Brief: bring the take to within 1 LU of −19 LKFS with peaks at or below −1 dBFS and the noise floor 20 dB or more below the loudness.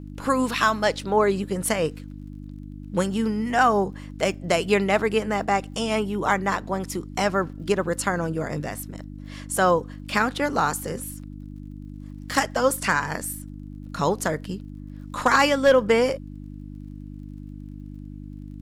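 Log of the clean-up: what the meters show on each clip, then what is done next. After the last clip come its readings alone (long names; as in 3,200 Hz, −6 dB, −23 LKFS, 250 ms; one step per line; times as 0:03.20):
crackle rate 37 per second; mains hum 50 Hz; hum harmonics up to 300 Hz; level of the hum −35 dBFS; integrated loudness −23.5 LKFS; sample peak −7.5 dBFS; target loudness −19.0 LKFS
→ click removal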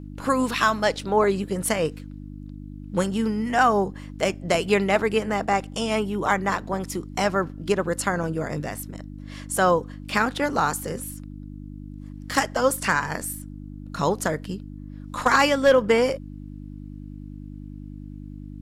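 crackle rate 0.11 per second; mains hum 50 Hz; hum harmonics up to 300 Hz; level of the hum −35 dBFS
→ hum removal 50 Hz, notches 6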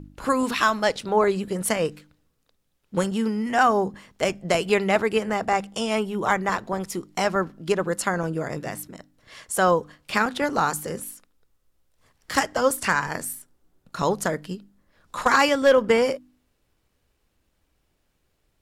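mains hum none found; integrated loudness −23.5 LKFS; sample peak −8.0 dBFS; target loudness −19.0 LKFS
→ level +4.5 dB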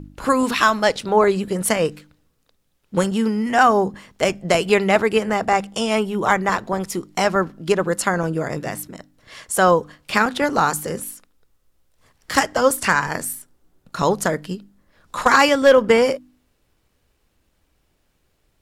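integrated loudness −19.5 LKFS; sample peak −3.5 dBFS; background noise floor −67 dBFS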